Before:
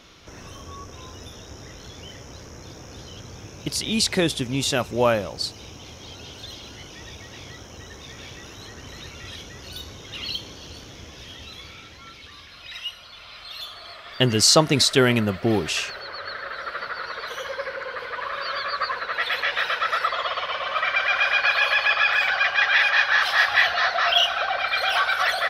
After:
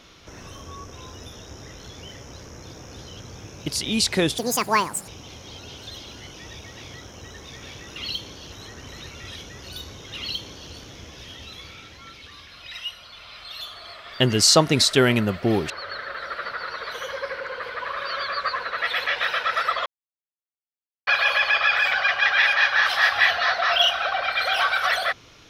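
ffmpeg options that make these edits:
-filter_complex "[0:a]asplit=8[a][b][c][d][e][f][g][h];[a]atrim=end=4.384[i];[b]atrim=start=4.38:end=5.64,asetpts=PTS-STARTPTS,asetrate=79380,aresample=44100[j];[c]atrim=start=5.636:end=8.522[k];[d]atrim=start=10.158:end=10.722[l];[e]atrim=start=8.518:end=15.702[m];[f]atrim=start=16.058:end=20.22,asetpts=PTS-STARTPTS,afade=t=out:st=4.158:d=0.004:c=hsin[n];[g]atrim=start=20.22:end=21.43,asetpts=PTS-STARTPTS,volume=0[o];[h]atrim=start=21.43,asetpts=PTS-STARTPTS,afade=t=in:d=0.004:c=hsin[p];[i][j]acrossfade=d=0.004:c1=hsin:c2=hsin[q];[q][k]acrossfade=d=0.004:c1=hsin:c2=hsin[r];[r][l]acrossfade=d=0.004:c1=hsin:c2=hsin[s];[s][m]acrossfade=d=0.004:c1=hsin:c2=hsin[t];[n][o][p]concat=n=3:v=0:a=1[u];[t][u]acrossfade=d=0.004:c1=hsin:c2=hsin"

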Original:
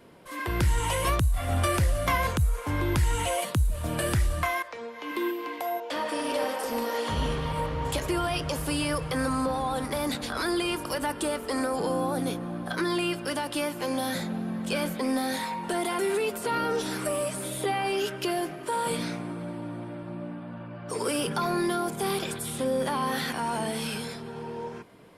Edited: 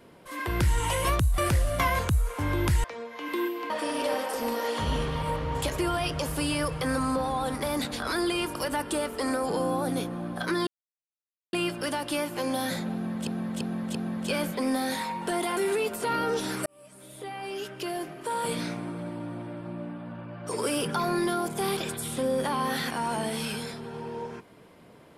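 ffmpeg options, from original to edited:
-filter_complex "[0:a]asplit=9[a][b][c][d][e][f][g][h][i];[a]atrim=end=1.382[j];[b]atrim=start=1.658:end=3.122[k];[c]atrim=start=4.668:end=5.532[l];[d]atrim=start=5.998:end=12.97,asetpts=PTS-STARTPTS,afade=t=out:st=6.968:d=0.004:c=hsin,apad=pad_dur=0.86[m];[e]atrim=start=12.97:end=14.712,asetpts=PTS-STARTPTS,afade=t=in:d=0.004:c=hsin[n];[f]atrim=start=14.368:end=14.712[o];[g]atrim=start=14.368:end=14.712[p];[h]atrim=start=14.368:end=17.08,asetpts=PTS-STARTPTS,afade=t=out:st=2.708:d=0.004:c=hsin[q];[i]atrim=start=17.08,asetpts=PTS-STARTPTS,afade=t=in:d=2.06[r];[j][k]acrossfade=d=0.004:c1=hsin:c2=hsin[s];[s][l]acrossfade=d=0.004:c1=hsin:c2=hsin[t];[m][n]concat=n=2:v=0:a=1[u];[t][u]acrossfade=d=0.004:c1=hsin:c2=hsin[v];[v][o]acrossfade=d=0.004:c1=hsin:c2=hsin[w];[w][p]acrossfade=d=0.004:c1=hsin:c2=hsin[x];[q][r]concat=n=2:v=0:a=1[y];[x][y]acrossfade=d=0.004:c1=hsin:c2=hsin"

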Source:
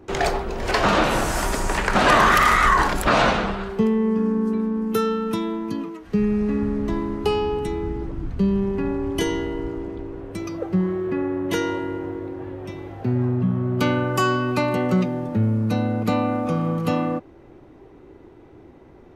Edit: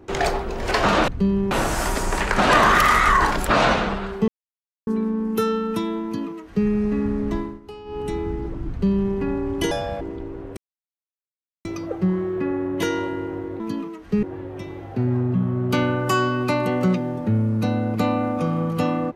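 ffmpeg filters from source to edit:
-filter_complex "[0:a]asplit=12[a][b][c][d][e][f][g][h][i][j][k][l];[a]atrim=end=1.082[m];[b]atrim=start=8.268:end=8.702[n];[c]atrim=start=1.078:end=3.85,asetpts=PTS-STARTPTS,afade=t=out:st=2.768:d=0.004:c=hsin[o];[d]atrim=start=3.85:end=4.44,asetpts=PTS-STARTPTS,volume=0[p];[e]atrim=start=4.44:end=7.17,asetpts=PTS-STARTPTS,afade=t=in:d=0.004:c=hsin,afade=t=out:st=2.47:d=0.26:silence=0.141254[q];[f]atrim=start=7.17:end=7.42,asetpts=PTS-STARTPTS,volume=-17dB[r];[g]atrim=start=7.42:end=9.284,asetpts=PTS-STARTPTS,afade=t=in:d=0.26:silence=0.141254[s];[h]atrim=start=9.28:end=9.8,asetpts=PTS-STARTPTS,asetrate=76734,aresample=44100,atrim=end_sample=13179,asetpts=PTS-STARTPTS[t];[i]atrim=start=9.796:end=10.36,asetpts=PTS-STARTPTS,afade=t=out:st=0.56:d=0.004:c=hsin,apad=pad_dur=1.08[u];[j]atrim=start=10.36:end=12.312,asetpts=PTS-STARTPTS,afade=t=in:d=0.004:c=hsin[v];[k]atrim=start=5.608:end=6.242[w];[l]atrim=start=12.308[x];[m][n]acrossfade=d=0.004:c1=hsin:c2=hsin[y];[o][p][q][r][s]concat=n=5:v=0:a=1[z];[y][z]acrossfade=d=0.004:c1=hsin:c2=hsin[aa];[aa][t]acrossfade=d=0.004:c1=hsin:c2=hsin[ab];[u][v]concat=n=2:v=0:a=1[ac];[ab][ac]acrossfade=d=0.004:c1=hsin:c2=hsin[ad];[ad][w]acrossfade=d=0.004:c1=hsin:c2=hsin[ae];[ae][x]acrossfade=d=0.004:c1=hsin:c2=hsin"

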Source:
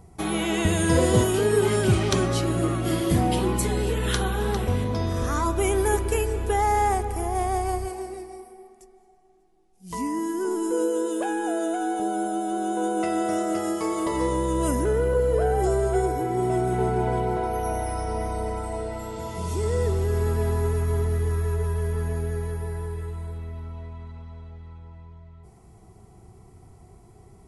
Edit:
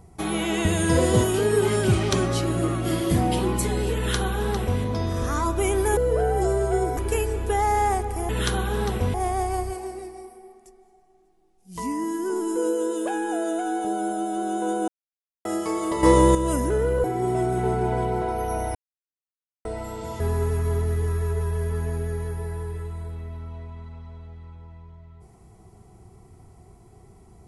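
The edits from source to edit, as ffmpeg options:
-filter_complex "[0:a]asplit=13[a][b][c][d][e][f][g][h][i][j][k][l][m];[a]atrim=end=5.972[n];[b]atrim=start=15.188:end=16.192[o];[c]atrim=start=5.968:end=7.292[p];[d]atrim=start=3.958:end=4.812[q];[e]atrim=start=7.288:end=13.03,asetpts=PTS-STARTPTS,afade=t=out:st=5.738:d=0.004:c=hsin[r];[f]atrim=start=13.03:end=13.6,asetpts=PTS-STARTPTS,volume=0[s];[g]atrim=start=13.6:end=14.182,asetpts=PTS-STARTPTS,afade=t=in:d=0.004:c=hsin[t];[h]atrim=start=14.178:end=14.502,asetpts=PTS-STARTPTS,volume=9dB[u];[i]atrim=start=14.498:end=15.192[v];[j]atrim=start=16.188:end=17.9,asetpts=PTS-STARTPTS,afade=t=out:st=1.708:d=0.004:c=hsin[w];[k]atrim=start=17.9:end=18.8,asetpts=PTS-STARTPTS,volume=0[x];[l]atrim=start=18.8:end=19.352,asetpts=PTS-STARTPTS,afade=t=in:d=0.004:c=hsin[y];[m]atrim=start=20.428[z];[n][o]acrossfade=d=0.004:c1=hsin:c2=hsin[aa];[aa][p]acrossfade=d=0.004:c1=hsin:c2=hsin[ab];[ab][q]acrossfade=d=0.004:c1=hsin:c2=hsin[ac];[r][s][t]concat=n=3:v=0:a=1[ad];[ac][ad]acrossfade=d=0.004:c1=hsin:c2=hsin[ae];[ae][u]acrossfade=d=0.004:c1=hsin:c2=hsin[af];[af][v]acrossfade=d=0.004:c1=hsin:c2=hsin[ag];[w][x][y]concat=n=3:v=0:a=1[ah];[ag][ah]acrossfade=d=0.004:c1=hsin:c2=hsin[ai];[ai][z]acrossfade=d=0.004:c1=hsin:c2=hsin"

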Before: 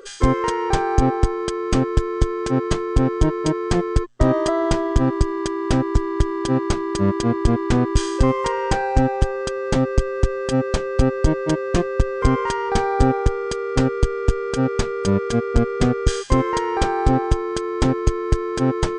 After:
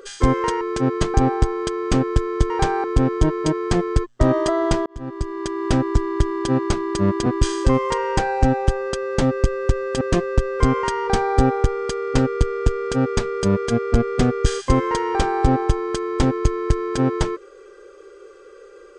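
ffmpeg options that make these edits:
-filter_complex "[0:a]asplit=8[a][b][c][d][e][f][g][h];[a]atrim=end=0.612[i];[b]atrim=start=2.308:end=2.842[j];[c]atrim=start=0.948:end=2.312[k];[d]atrim=start=0.608:end=0.952[l];[e]atrim=start=2.838:end=4.86,asetpts=PTS-STARTPTS,afade=t=out:st=2.018:d=0.004:c=hsin[m];[f]atrim=start=4.86:end=7.262,asetpts=PTS-STARTPTS,afade=t=in:d=0.8[n];[g]atrim=start=7.798:end=10.552[o];[h]atrim=start=11.628[p];[i][j]acrossfade=d=0.004:c1=hsin:c2=hsin[q];[q][k]acrossfade=d=0.004:c1=hsin:c2=hsin[r];[r][l]acrossfade=d=0.004:c1=hsin:c2=hsin[s];[m][n]concat=n=2:v=0:a=1[t];[s][t]acrossfade=d=0.004:c1=hsin:c2=hsin[u];[u][o]acrossfade=d=0.004:c1=hsin:c2=hsin[v];[v][p]acrossfade=d=0.004:c1=hsin:c2=hsin"

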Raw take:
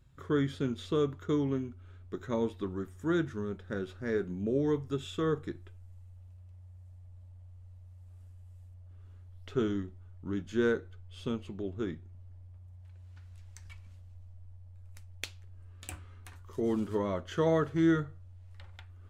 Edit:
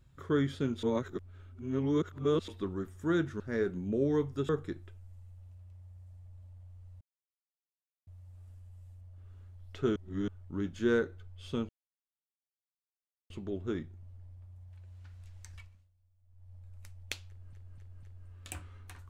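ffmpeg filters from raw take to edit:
-filter_complex "[0:a]asplit=14[a][b][c][d][e][f][g][h][i][j][k][l][m][n];[a]atrim=end=0.832[o];[b]atrim=start=0.828:end=2.482,asetpts=PTS-STARTPTS,areverse[p];[c]atrim=start=2.478:end=3.402[q];[d]atrim=start=3.938:end=5.032[r];[e]atrim=start=5.278:end=7.8,asetpts=PTS-STARTPTS,afade=t=out:st=2.518:d=0.004:c=hsin,apad=pad_dur=1.06[s];[f]atrim=start=7.8:end=9.692,asetpts=PTS-STARTPTS,afade=t=in:d=0.004:c=hsin[t];[g]atrim=start=9.688:end=10.012,asetpts=PTS-STARTPTS,areverse[u];[h]atrim=start=10.008:end=11.42,asetpts=PTS-STARTPTS,afade=t=out:st=1.408:d=0.004:c=hsin,apad=pad_dur=1.61[v];[i]atrim=start=11.42:end=14.07,asetpts=PTS-STARTPTS,afade=t=in:d=0.004:c=hsin,afade=t=out:st=2.27:d=0.38:c=qua:silence=0.0891251[w];[j]atrim=start=14.07:end=14.27,asetpts=PTS-STARTPTS,volume=-21dB[x];[k]atrim=start=14.27:end=15.652,asetpts=PTS-STARTPTS,afade=t=in:d=0.38:c=qua:silence=0.0891251[y];[l]atrim=start=15.398:end=15.652[z];[m]atrim=start=15.398:end=15.652[aa];[n]atrim=start=15.398[ab];[o][p]acrossfade=d=0.004:c1=hsin:c2=hsin[ac];[ac][q]acrossfade=d=0.004:c1=hsin:c2=hsin[ad];[ad][r]acrossfade=d=0.004:c1=hsin:c2=hsin[ae];[s][t]concat=n=2:v=0:a=1[af];[ae][af]acrossfade=d=0.004:c1=hsin:c2=hsin[ag];[ag][u]acrossfade=d=0.004:c1=hsin:c2=hsin[ah];[v][w][x][y]concat=n=4:v=0:a=1[ai];[ah][ai]acrossfade=d=0.004:c1=hsin:c2=hsin[aj];[aj][z]acrossfade=d=0.004:c1=hsin:c2=hsin[ak];[ak][aa]acrossfade=d=0.004:c1=hsin:c2=hsin[al];[al][ab]acrossfade=d=0.004:c1=hsin:c2=hsin"

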